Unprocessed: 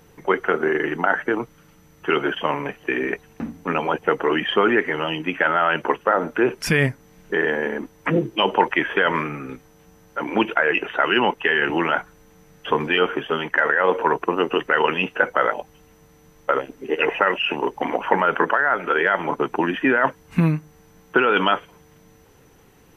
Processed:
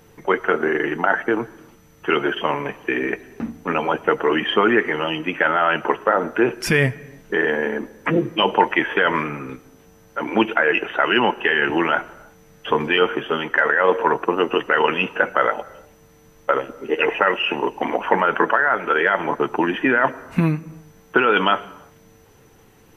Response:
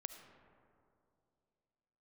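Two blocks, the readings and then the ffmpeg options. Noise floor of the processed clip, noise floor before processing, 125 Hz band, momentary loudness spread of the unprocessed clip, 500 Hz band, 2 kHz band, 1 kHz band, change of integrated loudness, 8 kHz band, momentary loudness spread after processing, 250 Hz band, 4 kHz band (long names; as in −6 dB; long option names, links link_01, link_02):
−52 dBFS, −53 dBFS, 0.0 dB, 8 LU, +1.5 dB, +1.0 dB, +1.0 dB, +1.0 dB, can't be measured, 8 LU, +1.5 dB, +1.5 dB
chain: -filter_complex "[0:a]asplit=2[link_01][link_02];[1:a]atrim=start_sample=2205,afade=type=out:start_time=0.4:duration=0.01,atrim=end_sample=18081,adelay=9[link_03];[link_02][link_03]afir=irnorm=-1:irlink=0,volume=-8dB[link_04];[link_01][link_04]amix=inputs=2:normalize=0,volume=1dB"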